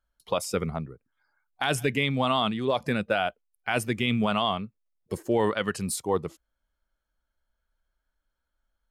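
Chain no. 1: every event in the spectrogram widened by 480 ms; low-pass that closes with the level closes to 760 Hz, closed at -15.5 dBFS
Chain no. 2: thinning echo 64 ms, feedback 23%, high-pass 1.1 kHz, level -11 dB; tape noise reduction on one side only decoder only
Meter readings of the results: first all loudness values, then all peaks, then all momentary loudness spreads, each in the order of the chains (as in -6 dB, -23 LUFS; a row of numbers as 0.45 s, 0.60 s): -22.0 LUFS, -27.5 LUFS; -7.5 dBFS, -12.0 dBFS; 7 LU, 12 LU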